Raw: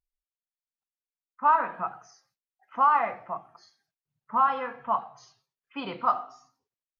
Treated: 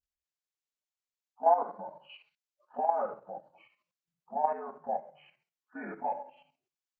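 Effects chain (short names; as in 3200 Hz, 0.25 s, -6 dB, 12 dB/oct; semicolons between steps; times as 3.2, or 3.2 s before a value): inharmonic rescaling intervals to 77%; level quantiser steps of 10 dB; spectral gain 2.09–2.35, 1400–4700 Hz +11 dB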